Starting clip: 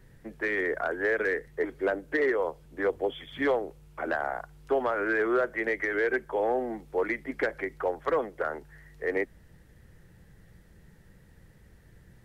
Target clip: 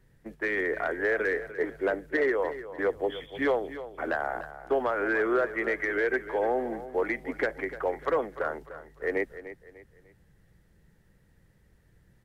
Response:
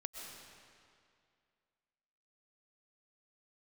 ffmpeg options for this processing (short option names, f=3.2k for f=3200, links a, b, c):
-af "agate=range=-7dB:threshold=-44dB:ratio=16:detection=peak,aecho=1:1:298|596|894:0.211|0.074|0.0259"